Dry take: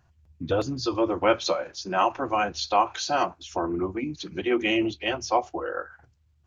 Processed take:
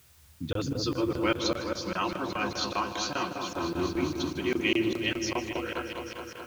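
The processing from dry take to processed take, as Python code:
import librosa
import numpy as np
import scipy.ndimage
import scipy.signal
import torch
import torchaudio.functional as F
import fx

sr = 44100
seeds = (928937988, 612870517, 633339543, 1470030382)

y = scipy.signal.sosfilt(scipy.signal.butter(2, 54.0, 'highpass', fs=sr, output='sos'), x)
y = fx.peak_eq(y, sr, hz=710.0, db=-14.0, octaves=1.3)
y = fx.notch(y, sr, hz=770.0, q=21.0)
y = fx.echo_opening(y, sr, ms=210, hz=750, octaves=1, feedback_pct=70, wet_db=-3)
y = fx.quant_dither(y, sr, seeds[0], bits=10, dither='triangular')
y = fx.high_shelf(y, sr, hz=6200.0, db=-5.0, at=(1.37, 3.41))
y = fx.buffer_crackle(y, sr, first_s=0.53, period_s=0.2, block=1024, kind='zero')
y = fx.echo_crushed(y, sr, ms=155, feedback_pct=55, bits=8, wet_db=-14)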